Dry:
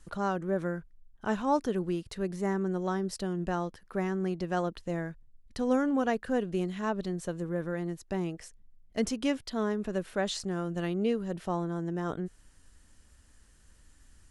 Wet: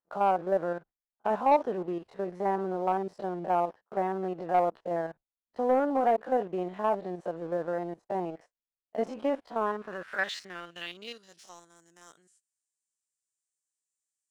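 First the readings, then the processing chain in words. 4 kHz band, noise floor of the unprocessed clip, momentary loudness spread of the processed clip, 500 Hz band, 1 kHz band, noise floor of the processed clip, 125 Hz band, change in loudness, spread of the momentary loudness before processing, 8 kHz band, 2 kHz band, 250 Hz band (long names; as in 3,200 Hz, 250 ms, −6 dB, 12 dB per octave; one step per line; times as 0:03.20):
−2.5 dB, −60 dBFS, 13 LU, +2.5 dB, +7.0 dB, below −85 dBFS, −9.0 dB, +1.5 dB, 8 LU, below −10 dB, +1.0 dB, −5.5 dB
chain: spectrum averaged block by block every 50 ms
noise gate −47 dBFS, range −22 dB
band-pass filter sweep 740 Hz → 7,700 Hz, 0:09.41–0:11.69
leveller curve on the samples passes 1
level +8 dB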